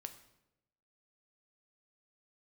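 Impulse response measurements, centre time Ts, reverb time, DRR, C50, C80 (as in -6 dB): 9 ms, 0.90 s, 7.5 dB, 12.0 dB, 14.5 dB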